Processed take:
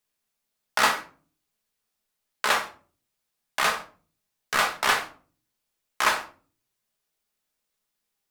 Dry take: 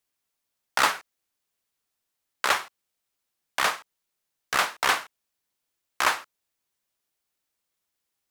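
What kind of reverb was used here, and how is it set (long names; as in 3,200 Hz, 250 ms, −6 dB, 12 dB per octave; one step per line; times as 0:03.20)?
rectangular room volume 270 cubic metres, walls furnished, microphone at 1.4 metres
level −1 dB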